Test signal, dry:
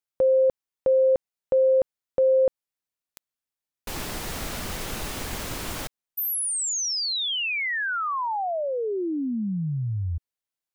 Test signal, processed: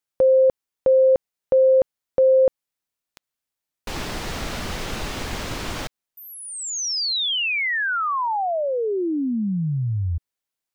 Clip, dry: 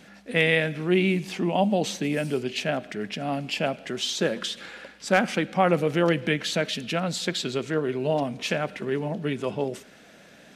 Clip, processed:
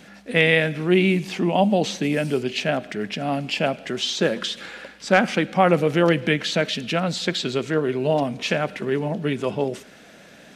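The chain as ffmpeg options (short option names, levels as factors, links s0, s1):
-filter_complex "[0:a]acrossover=split=6700[s0][s1];[s1]acompressor=threshold=0.00316:ratio=4:attack=1:release=60[s2];[s0][s2]amix=inputs=2:normalize=0,volume=1.58"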